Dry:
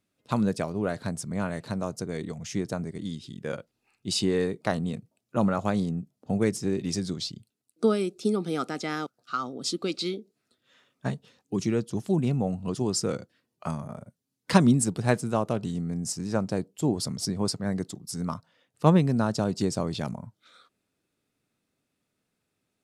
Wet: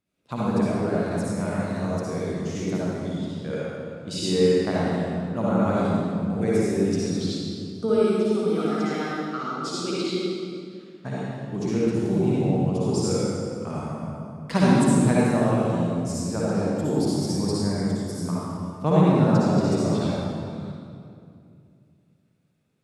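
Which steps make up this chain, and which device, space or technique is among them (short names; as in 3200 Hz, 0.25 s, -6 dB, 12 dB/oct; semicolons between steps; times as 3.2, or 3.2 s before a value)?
swimming-pool hall (reverb RT60 2.4 s, pre-delay 52 ms, DRR -8.5 dB; high shelf 4500 Hz -5 dB); gain -5 dB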